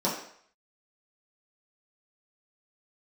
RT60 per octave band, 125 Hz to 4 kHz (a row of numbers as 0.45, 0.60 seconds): 0.40, 0.50, 0.60, 0.65, 0.60, 0.60 seconds